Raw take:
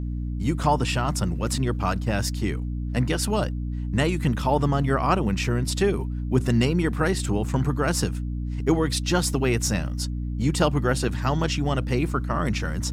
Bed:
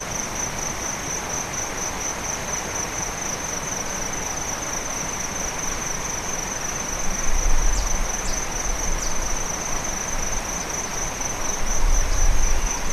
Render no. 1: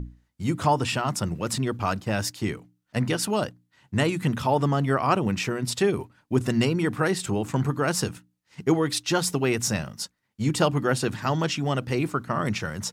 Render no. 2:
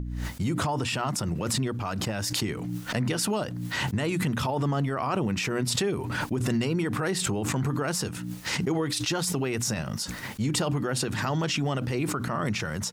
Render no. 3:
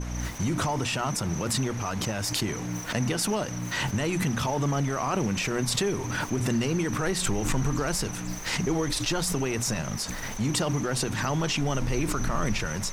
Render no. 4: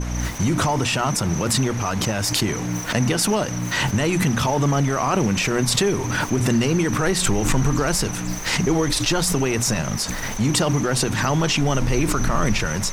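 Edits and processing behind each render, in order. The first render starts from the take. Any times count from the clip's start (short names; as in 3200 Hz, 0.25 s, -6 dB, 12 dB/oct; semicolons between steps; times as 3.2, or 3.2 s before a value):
notches 60/120/180/240/300 Hz
limiter -19.5 dBFS, peak gain reduction 11 dB; backwards sustainer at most 21 dB/s
add bed -13.5 dB
gain +7 dB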